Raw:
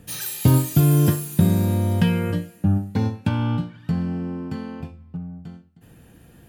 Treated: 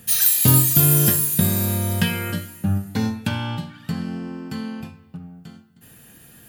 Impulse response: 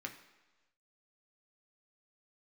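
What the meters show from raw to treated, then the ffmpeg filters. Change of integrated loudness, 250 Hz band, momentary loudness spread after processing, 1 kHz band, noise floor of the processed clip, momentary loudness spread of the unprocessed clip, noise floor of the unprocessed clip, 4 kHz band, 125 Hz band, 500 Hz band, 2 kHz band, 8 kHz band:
+3.5 dB, −2.5 dB, 18 LU, +0.5 dB, −50 dBFS, 18 LU, −51 dBFS, +7.5 dB, −2.5 dB, −2.0 dB, +5.5 dB, +12.0 dB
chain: -filter_complex "[0:a]crystalizer=i=6:c=0,asplit=2[link_01][link_02];[1:a]atrim=start_sample=2205,asetrate=34398,aresample=44100,lowpass=6400[link_03];[link_02][link_03]afir=irnorm=-1:irlink=0,volume=-2.5dB[link_04];[link_01][link_04]amix=inputs=2:normalize=0,volume=-5.5dB"

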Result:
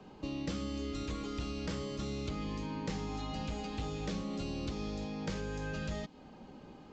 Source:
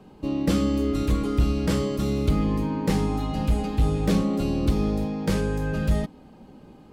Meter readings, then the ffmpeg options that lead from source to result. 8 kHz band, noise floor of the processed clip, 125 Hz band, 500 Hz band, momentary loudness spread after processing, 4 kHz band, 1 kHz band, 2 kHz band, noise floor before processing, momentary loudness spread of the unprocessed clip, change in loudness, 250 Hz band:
−9.5 dB, −54 dBFS, −15.0 dB, −13.0 dB, 4 LU, −7.0 dB, −10.5 dB, −8.0 dB, −50 dBFS, 4 LU, −14.0 dB, −14.5 dB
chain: -filter_complex "[0:a]lowshelf=frequency=500:gain=-6,acrossover=split=150|2400[link_01][link_02][link_03];[link_01]acompressor=threshold=-42dB:ratio=4[link_04];[link_02]acompressor=threshold=-40dB:ratio=4[link_05];[link_03]acompressor=threshold=-48dB:ratio=4[link_06];[link_04][link_05][link_06]amix=inputs=3:normalize=0,aresample=16000,aresample=44100"

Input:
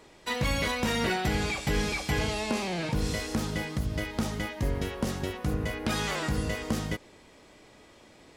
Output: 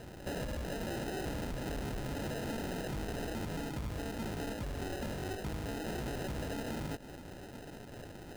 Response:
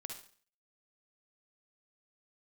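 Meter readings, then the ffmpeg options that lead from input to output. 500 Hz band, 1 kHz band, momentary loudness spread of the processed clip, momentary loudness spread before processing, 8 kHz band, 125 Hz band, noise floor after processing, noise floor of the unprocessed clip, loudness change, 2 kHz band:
−6.5 dB, −9.0 dB, 10 LU, 5 LU, −10.5 dB, −8.5 dB, −49 dBFS, −55 dBFS, −9.5 dB, −12.0 dB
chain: -af "equalizer=frequency=3200:width_type=o:width=1:gain=15,alimiter=limit=-21.5dB:level=0:latency=1,acrusher=samples=39:mix=1:aa=0.000001,acompressor=threshold=-35dB:ratio=6,asoftclip=type=tanh:threshold=-35dB,volume=2.5dB"

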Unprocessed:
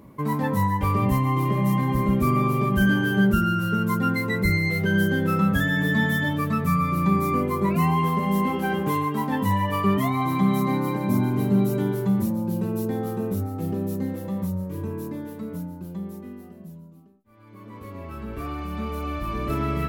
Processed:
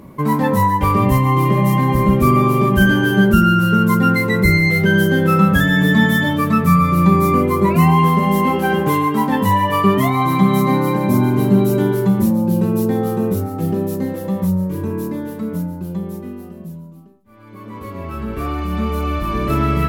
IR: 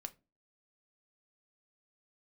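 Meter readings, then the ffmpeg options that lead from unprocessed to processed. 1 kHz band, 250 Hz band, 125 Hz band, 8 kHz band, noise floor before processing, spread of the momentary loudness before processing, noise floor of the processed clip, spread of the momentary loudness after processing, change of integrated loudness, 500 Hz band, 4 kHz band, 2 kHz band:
+8.5 dB, +8.0 dB, +7.5 dB, +8.5 dB, −45 dBFS, 13 LU, −36 dBFS, 12 LU, +8.0 dB, +9.5 dB, +9.0 dB, +8.0 dB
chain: -filter_complex "[0:a]asplit=2[link_01][link_02];[1:a]atrim=start_sample=2205,asetrate=29988,aresample=44100[link_03];[link_02][link_03]afir=irnorm=-1:irlink=0,volume=6.5dB[link_04];[link_01][link_04]amix=inputs=2:normalize=0"

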